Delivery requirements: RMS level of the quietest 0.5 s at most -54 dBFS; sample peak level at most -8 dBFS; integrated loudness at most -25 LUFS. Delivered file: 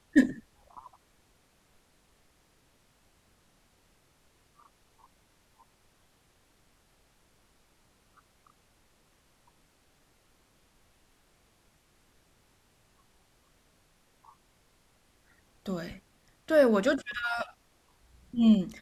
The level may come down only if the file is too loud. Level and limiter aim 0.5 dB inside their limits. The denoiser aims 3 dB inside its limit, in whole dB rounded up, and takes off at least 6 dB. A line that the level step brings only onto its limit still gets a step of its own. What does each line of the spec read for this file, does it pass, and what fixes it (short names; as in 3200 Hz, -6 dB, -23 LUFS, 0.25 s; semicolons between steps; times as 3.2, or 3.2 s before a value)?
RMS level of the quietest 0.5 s -66 dBFS: OK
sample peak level -9.0 dBFS: OK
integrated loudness -27.5 LUFS: OK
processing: none